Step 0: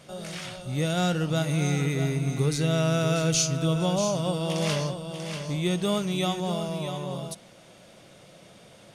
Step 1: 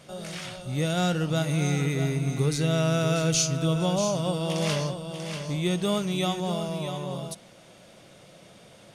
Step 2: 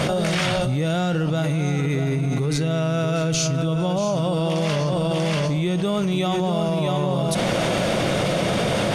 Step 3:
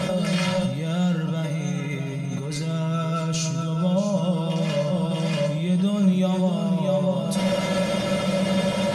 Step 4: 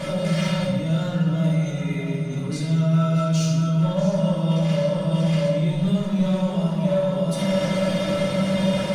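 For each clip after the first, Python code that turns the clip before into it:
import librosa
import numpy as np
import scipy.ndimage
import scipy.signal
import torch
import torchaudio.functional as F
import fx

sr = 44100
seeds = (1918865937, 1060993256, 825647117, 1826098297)

y1 = x
y2 = fx.high_shelf(y1, sr, hz=4200.0, db=-10.0)
y2 = fx.env_flatten(y2, sr, amount_pct=100)
y3 = fx.comb_fb(y2, sr, f0_hz=190.0, decay_s=0.15, harmonics='odd', damping=0.0, mix_pct=90)
y3 = fx.echo_feedback(y3, sr, ms=68, feedback_pct=56, wet_db=-13)
y3 = F.gain(torch.from_numpy(y3), 7.0).numpy()
y4 = np.clip(y3, -10.0 ** (-18.5 / 20.0), 10.0 ** (-18.5 / 20.0))
y4 = fx.room_shoebox(y4, sr, seeds[0], volume_m3=690.0, walls='mixed', distance_m=2.5)
y4 = F.gain(torch.from_numpy(y4), -6.0).numpy()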